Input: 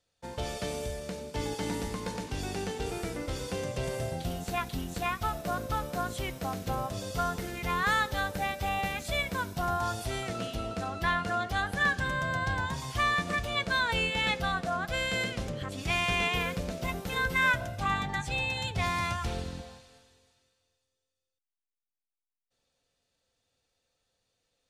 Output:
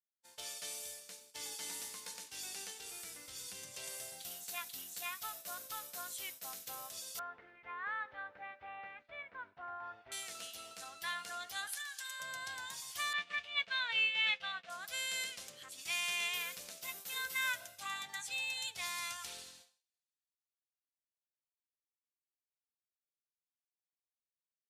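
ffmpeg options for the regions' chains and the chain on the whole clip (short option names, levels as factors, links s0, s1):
-filter_complex "[0:a]asettb=1/sr,asplit=3[s0][s1][s2];[s0]atrim=end=2.704[s3];[s1]atrim=start=2.7:end=3.74,asetpts=PTS-STARTPTS,afade=t=in:d=0.004:c=qsin,afade=t=out:st=1.036:d=0.004:c=qsin,asubboost=boost=10.5:cutoff=250,acompressor=threshold=0.0224:ratio=1.5:attack=3.2:release=140:knee=1:detection=peak[s4];[s2]atrim=start=3.736[s5];[s3][s4]acrossfade=d=0.004:c1=hsin:c2=qsin[s6];[s6][s5]acrossfade=d=0.004:c1=qsin:c2=hsin,asettb=1/sr,asplit=3[s7][s8][s9];[s7]atrim=end=7.194[s10];[s8]atrim=start=7.19:end=10.12,asetpts=PTS-STARTPTS,afade=t=in:d=0.004:c=qsin,afade=t=out:st=2.926:d=0.004:c=qsin,lowpass=f=1900:w=0.5412,lowpass=f=1900:w=1.3066,bandreject=f=180:w=5.5[s11];[s9]atrim=start=10.116[s12];[s10][s11]acrossfade=d=0.004:c1=hsin:c2=qsin[s13];[s13][s12]acrossfade=d=0.004:c1=qsin:c2=hsin,asettb=1/sr,asplit=3[s14][s15][s16];[s14]atrim=end=11.674[s17];[s15]atrim=start=11.67:end=12.2,asetpts=PTS-STARTPTS,afade=t=in:d=0.004:c=qsin,afade=t=out:st=0.526:d=0.004:c=qsin,highpass=810,highshelf=f=3000:g=7.5,acompressor=threshold=0.0282:ratio=16:attack=3.2:release=140:knee=1:detection=peak[s18];[s16]atrim=start=12.196[s19];[s17][s18]acrossfade=d=0.004:c1=hsin:c2=qsin[s20];[s20][s19]acrossfade=d=0.004:c1=qsin:c2=hsin,asettb=1/sr,asplit=3[s21][s22][s23];[s21]atrim=end=13.134[s24];[s22]atrim=start=13.13:end=14.7,asetpts=PTS-STARTPTS,afade=t=in:d=0.004:c=qsin,afade=t=out:st=1.566:d=0.004:c=qsin,agate=range=0.0224:threshold=0.0316:ratio=3:release=100:detection=peak,lowpass=f=2800:t=q:w=2,bandreject=f=320:w=6.2[s25];[s23]atrim=start=14.696[s26];[s24][s25]acrossfade=d=0.004:c1=hsin:c2=qsin[s27];[s27][s26]acrossfade=d=0.004:c1=qsin:c2=hsin,agate=range=0.0224:threshold=0.02:ratio=3:detection=peak,aderivative,volume=1.26"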